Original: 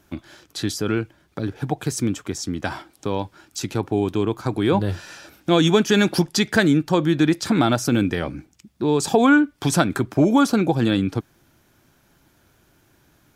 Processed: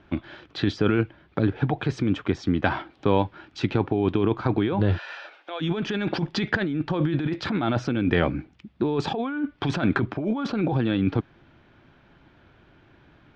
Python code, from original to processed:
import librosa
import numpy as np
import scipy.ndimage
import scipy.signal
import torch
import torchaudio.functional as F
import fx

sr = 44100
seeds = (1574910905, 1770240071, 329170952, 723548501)

y = scipy.signal.sosfilt(scipy.signal.butter(4, 3400.0, 'lowpass', fs=sr, output='sos'), x)
y = fx.over_compress(y, sr, threshold_db=-23.0, ratio=-1.0)
y = fx.highpass(y, sr, hz=530.0, slope=24, at=(4.97, 5.6), fade=0.02)